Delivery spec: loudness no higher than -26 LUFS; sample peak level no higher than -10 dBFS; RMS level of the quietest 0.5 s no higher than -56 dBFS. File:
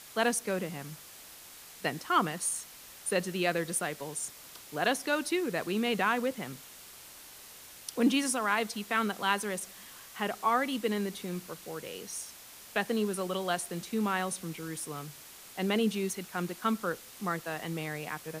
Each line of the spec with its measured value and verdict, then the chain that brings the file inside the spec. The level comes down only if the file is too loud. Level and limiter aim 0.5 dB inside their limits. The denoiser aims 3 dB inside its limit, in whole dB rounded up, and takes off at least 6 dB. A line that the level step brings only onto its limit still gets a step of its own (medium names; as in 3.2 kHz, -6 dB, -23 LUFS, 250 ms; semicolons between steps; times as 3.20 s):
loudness -32.0 LUFS: pass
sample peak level -12.0 dBFS: pass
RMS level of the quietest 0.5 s -50 dBFS: fail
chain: noise reduction 9 dB, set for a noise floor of -50 dBFS